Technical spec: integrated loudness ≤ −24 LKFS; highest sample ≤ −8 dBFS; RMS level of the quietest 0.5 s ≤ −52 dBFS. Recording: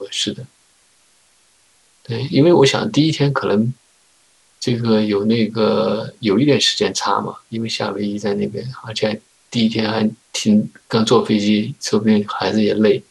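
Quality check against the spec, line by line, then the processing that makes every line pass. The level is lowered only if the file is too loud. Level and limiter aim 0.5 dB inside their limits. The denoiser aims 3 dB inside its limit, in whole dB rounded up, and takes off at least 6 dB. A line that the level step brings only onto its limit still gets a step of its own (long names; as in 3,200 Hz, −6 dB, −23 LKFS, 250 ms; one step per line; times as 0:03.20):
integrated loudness −17.5 LKFS: out of spec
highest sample −2.0 dBFS: out of spec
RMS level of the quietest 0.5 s −56 dBFS: in spec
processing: level −7 dB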